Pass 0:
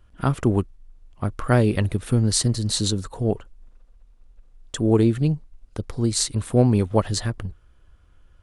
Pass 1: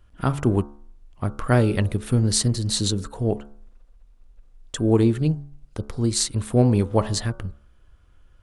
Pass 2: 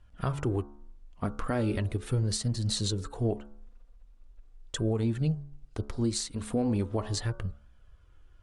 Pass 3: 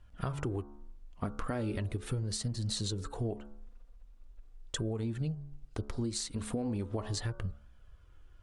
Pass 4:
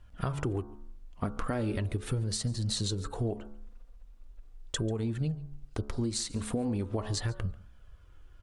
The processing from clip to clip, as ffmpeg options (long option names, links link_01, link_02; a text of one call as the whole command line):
ffmpeg -i in.wav -af "bandreject=frequency=71.26:width_type=h:width=4,bandreject=frequency=142.52:width_type=h:width=4,bandreject=frequency=213.78:width_type=h:width=4,bandreject=frequency=285.04:width_type=h:width=4,bandreject=frequency=356.3:width_type=h:width=4,bandreject=frequency=427.56:width_type=h:width=4,bandreject=frequency=498.82:width_type=h:width=4,bandreject=frequency=570.08:width_type=h:width=4,bandreject=frequency=641.34:width_type=h:width=4,bandreject=frequency=712.6:width_type=h:width=4,bandreject=frequency=783.86:width_type=h:width=4,bandreject=frequency=855.12:width_type=h:width=4,bandreject=frequency=926.38:width_type=h:width=4,bandreject=frequency=997.64:width_type=h:width=4,bandreject=frequency=1068.9:width_type=h:width=4,bandreject=frequency=1140.16:width_type=h:width=4,bandreject=frequency=1211.42:width_type=h:width=4,bandreject=frequency=1282.68:width_type=h:width=4,bandreject=frequency=1353.94:width_type=h:width=4,bandreject=frequency=1425.2:width_type=h:width=4,bandreject=frequency=1496.46:width_type=h:width=4,bandreject=frequency=1567.72:width_type=h:width=4" out.wav
ffmpeg -i in.wav -af "flanger=delay=1.1:depth=3.3:regen=-42:speed=0.39:shape=triangular,alimiter=limit=-19.5dB:level=0:latency=1:release=249,lowpass=9700" out.wav
ffmpeg -i in.wav -af "acompressor=threshold=-31dB:ratio=6" out.wav
ffmpeg -i in.wav -af "aecho=1:1:141:0.0794,volume=3dB" out.wav